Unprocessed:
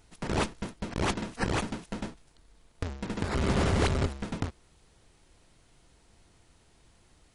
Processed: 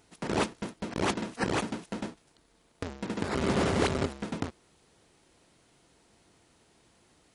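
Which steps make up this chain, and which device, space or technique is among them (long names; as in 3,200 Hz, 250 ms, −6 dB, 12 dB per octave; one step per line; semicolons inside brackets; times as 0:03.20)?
filter by subtraction (in parallel: low-pass filter 280 Hz 12 dB per octave + polarity inversion)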